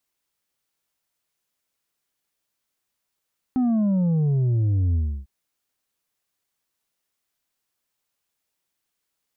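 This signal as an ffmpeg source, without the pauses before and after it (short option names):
-f lavfi -i "aevalsrc='0.119*clip((1.7-t)/0.31,0,1)*tanh(1.68*sin(2*PI*260*1.7/log(65/260)*(exp(log(65/260)*t/1.7)-1)))/tanh(1.68)':d=1.7:s=44100"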